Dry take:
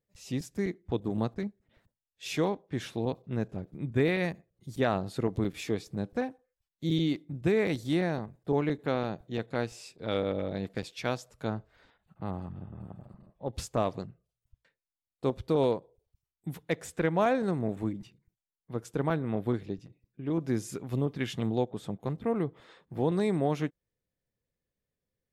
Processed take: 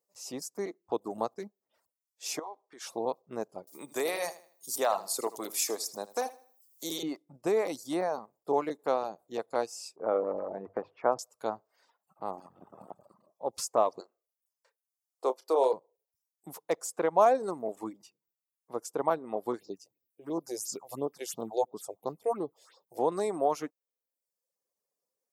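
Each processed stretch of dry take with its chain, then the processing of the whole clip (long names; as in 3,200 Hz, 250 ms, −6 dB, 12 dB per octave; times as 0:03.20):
0:02.39–0:02.87: notch filter 540 Hz, Q 5.7 + downward compressor, threshold −35 dBFS + meter weighting curve A
0:03.67–0:07.03: RIAA equalisation recording + repeating echo 79 ms, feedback 32%, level −8 dB + multiband upward and downward compressor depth 40%
0:09.96–0:11.19: low-pass filter 1,600 Hz 24 dB per octave + mains-hum notches 50/100/150 Hz + transient designer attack +4 dB, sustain +9 dB
0:12.37–0:12.95: low-shelf EQ 89 Hz −10 dB + transient designer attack +11 dB, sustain +4 dB
0:14.00–0:15.73: high-pass filter 330 Hz 24 dB per octave + double-tracking delay 31 ms −10 dB
0:19.59–0:22.99: high-shelf EQ 4,400 Hz +7 dB + all-pass phaser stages 4, 2.9 Hz, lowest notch 190–2,400 Hz
whole clip: high-pass filter 600 Hz 12 dB per octave; flat-topped bell 2,400 Hz −13.5 dB; reverb reduction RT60 0.82 s; level +7.5 dB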